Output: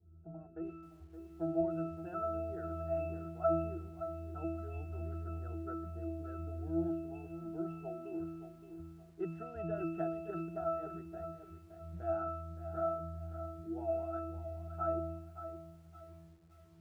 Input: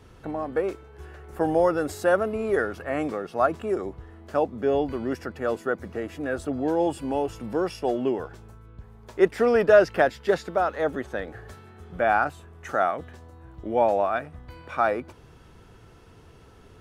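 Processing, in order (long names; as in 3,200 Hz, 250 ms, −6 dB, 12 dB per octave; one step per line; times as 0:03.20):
harmonic and percussive parts rebalanced percussive +5 dB
low-pass that shuts in the quiet parts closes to 500 Hz, open at −16.5 dBFS
resonances in every octave E, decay 0.76 s
feedback echo at a low word length 569 ms, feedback 35%, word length 11 bits, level −10.5 dB
level +2.5 dB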